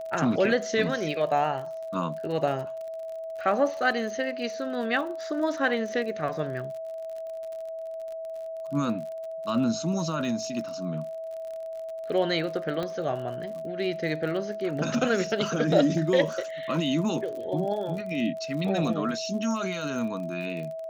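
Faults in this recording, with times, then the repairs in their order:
crackle 46 per s -36 dBFS
whine 650 Hz -33 dBFS
12.83 s: pop -19 dBFS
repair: de-click; band-stop 650 Hz, Q 30

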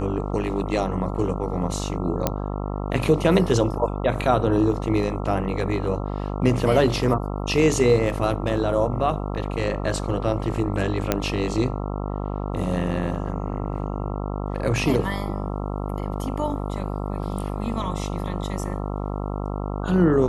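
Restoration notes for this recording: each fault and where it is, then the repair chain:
buzz 50 Hz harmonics 27 -28 dBFS
2.27 s: pop -6 dBFS
11.12 s: pop -5 dBFS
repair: de-click; de-hum 50 Hz, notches 27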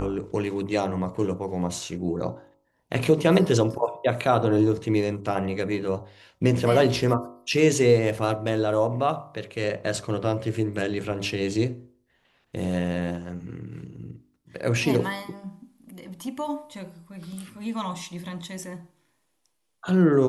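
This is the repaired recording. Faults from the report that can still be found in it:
2.27 s: pop

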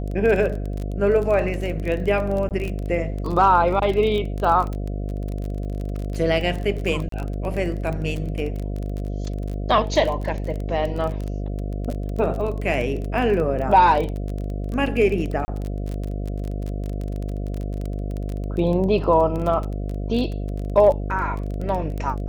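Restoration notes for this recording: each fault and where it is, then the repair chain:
buzz 50 Hz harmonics 14 -27 dBFS
crackle 23 per s -26 dBFS
2.49–2.51 s: dropout 18 ms
7.09–7.12 s: dropout 33 ms
15.45–15.48 s: dropout 30 ms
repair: de-click; de-hum 50 Hz, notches 14; interpolate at 2.49 s, 18 ms; interpolate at 7.09 s, 33 ms; interpolate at 15.45 s, 30 ms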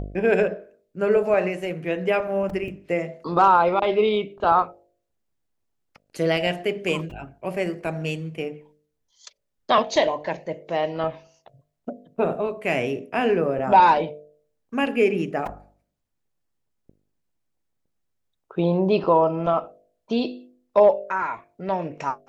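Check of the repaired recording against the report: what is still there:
nothing left

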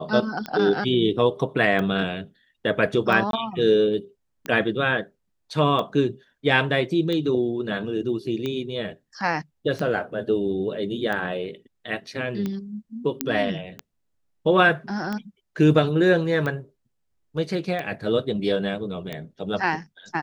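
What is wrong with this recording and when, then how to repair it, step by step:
tick 45 rpm -16 dBFS
3.31–3.33 s: dropout 22 ms
13.21 s: pop -5 dBFS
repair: de-click; interpolate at 3.31 s, 22 ms

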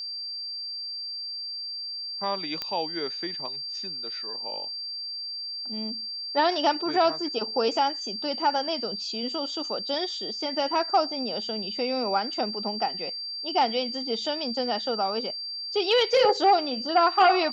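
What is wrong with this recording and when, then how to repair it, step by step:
whine 4.7 kHz -32 dBFS
2.62 s: pop -15 dBFS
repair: de-click; band-stop 4.7 kHz, Q 30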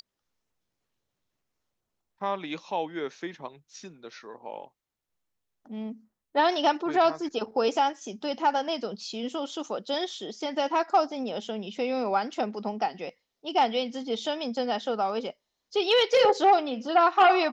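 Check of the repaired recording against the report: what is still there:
nothing left

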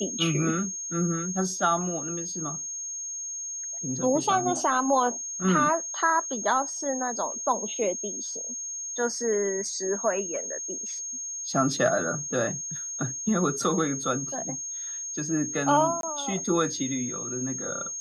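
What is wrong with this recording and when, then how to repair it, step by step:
whine 6.5 kHz -32 dBFS
16.01–16.03 s: dropout 22 ms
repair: band-stop 6.5 kHz, Q 30; interpolate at 16.01 s, 22 ms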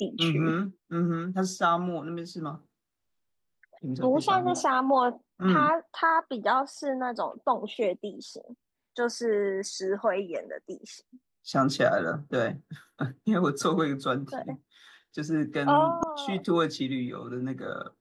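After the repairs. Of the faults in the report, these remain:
nothing left

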